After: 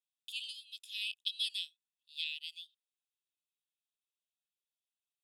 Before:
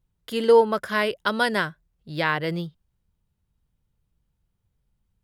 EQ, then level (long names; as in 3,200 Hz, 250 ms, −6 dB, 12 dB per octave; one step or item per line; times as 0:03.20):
dynamic equaliser 3,900 Hz, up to +4 dB, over −38 dBFS, Q 1.1
Chebyshev high-pass with heavy ripple 2,500 Hz, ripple 9 dB
high-shelf EQ 6,200 Hz −10.5 dB
+1.0 dB